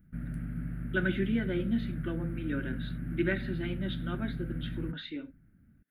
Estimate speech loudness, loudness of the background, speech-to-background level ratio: -35.0 LUFS, -38.0 LUFS, 3.0 dB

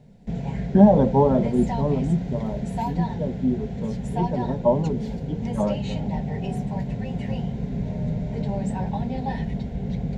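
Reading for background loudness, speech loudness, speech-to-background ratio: -29.0 LUFS, -23.0 LUFS, 6.0 dB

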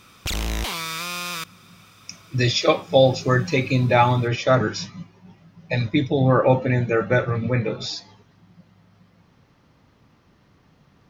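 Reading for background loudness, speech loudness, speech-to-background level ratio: -28.0 LUFS, -20.5 LUFS, 7.5 dB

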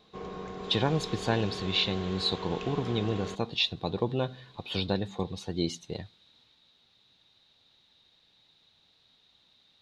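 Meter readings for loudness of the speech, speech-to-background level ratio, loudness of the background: -31.0 LUFS, 8.5 dB, -39.5 LUFS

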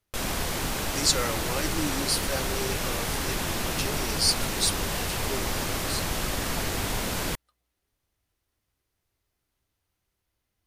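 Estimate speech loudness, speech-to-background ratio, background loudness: -29.5 LUFS, -0.5 dB, -29.0 LUFS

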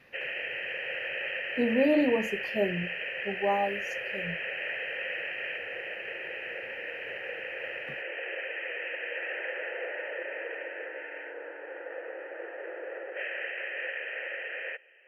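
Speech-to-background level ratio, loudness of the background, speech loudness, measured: 5.0 dB, -35.0 LUFS, -30.0 LUFS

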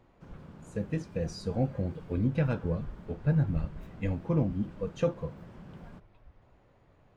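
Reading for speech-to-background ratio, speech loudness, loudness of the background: 17.5 dB, -32.5 LUFS, -50.0 LUFS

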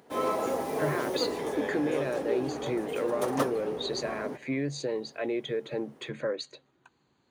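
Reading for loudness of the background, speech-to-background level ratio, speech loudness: -33.0 LUFS, -0.5 dB, -33.5 LUFS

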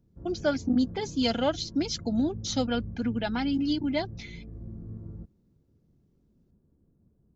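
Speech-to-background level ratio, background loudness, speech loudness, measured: 13.5 dB, -42.5 LUFS, -29.0 LUFS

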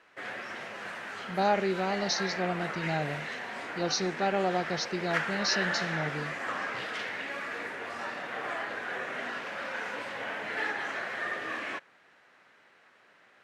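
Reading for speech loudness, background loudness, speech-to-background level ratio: -31.5 LUFS, -35.0 LUFS, 3.5 dB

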